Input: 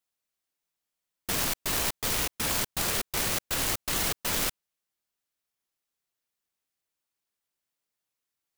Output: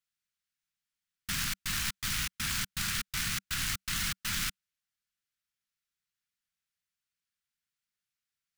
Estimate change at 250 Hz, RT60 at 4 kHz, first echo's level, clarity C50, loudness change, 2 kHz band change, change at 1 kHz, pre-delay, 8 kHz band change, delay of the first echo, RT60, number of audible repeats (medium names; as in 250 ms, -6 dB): -6.0 dB, no reverb, no echo, no reverb, -4.5 dB, -1.0 dB, -7.5 dB, no reverb, -4.5 dB, no echo, no reverb, no echo